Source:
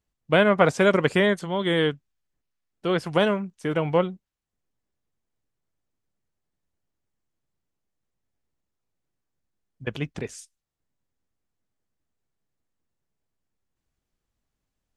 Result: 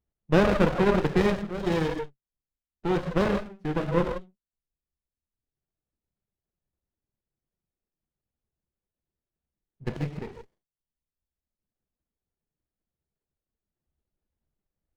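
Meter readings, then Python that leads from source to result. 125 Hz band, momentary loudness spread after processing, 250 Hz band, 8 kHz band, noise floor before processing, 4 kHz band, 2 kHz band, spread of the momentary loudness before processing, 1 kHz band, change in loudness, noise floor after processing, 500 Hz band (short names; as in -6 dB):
0.0 dB, 16 LU, -0.5 dB, n/a, -83 dBFS, -8.5 dB, -7.0 dB, 16 LU, -3.0 dB, -3.0 dB, under -85 dBFS, -4.0 dB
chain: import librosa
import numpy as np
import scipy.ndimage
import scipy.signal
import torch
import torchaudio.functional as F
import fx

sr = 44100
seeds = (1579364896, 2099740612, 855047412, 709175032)

y = scipy.signal.sosfilt(scipy.signal.butter(4, 3300.0, 'lowpass', fs=sr, output='sos'), x)
y = fx.rev_gated(y, sr, seeds[0], gate_ms=200, shape='flat', drr_db=-1.0)
y = fx.dereverb_blind(y, sr, rt60_s=1.2)
y = fx.running_max(y, sr, window=33)
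y = y * 10.0 ** (-3.0 / 20.0)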